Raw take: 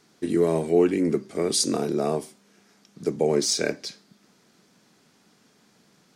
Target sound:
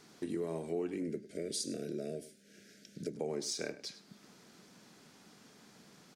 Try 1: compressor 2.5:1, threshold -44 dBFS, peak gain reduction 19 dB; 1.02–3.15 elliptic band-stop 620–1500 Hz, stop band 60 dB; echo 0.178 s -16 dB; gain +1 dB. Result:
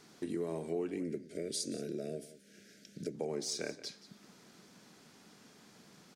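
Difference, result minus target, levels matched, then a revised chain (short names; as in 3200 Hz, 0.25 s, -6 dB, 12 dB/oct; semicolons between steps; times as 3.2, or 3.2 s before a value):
echo 76 ms late
compressor 2.5:1, threshold -44 dBFS, peak gain reduction 19 dB; 1.02–3.15 elliptic band-stop 620–1500 Hz, stop band 60 dB; echo 0.102 s -16 dB; gain +1 dB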